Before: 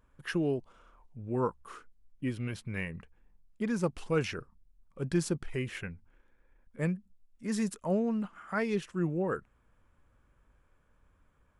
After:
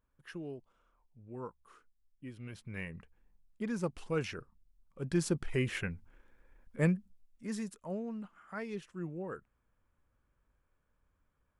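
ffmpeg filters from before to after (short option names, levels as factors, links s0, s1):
-af "volume=1.41,afade=t=in:st=2.31:d=0.58:silence=0.375837,afade=t=in:st=5:d=0.64:silence=0.421697,afade=t=out:st=6.84:d=0.83:silence=0.237137"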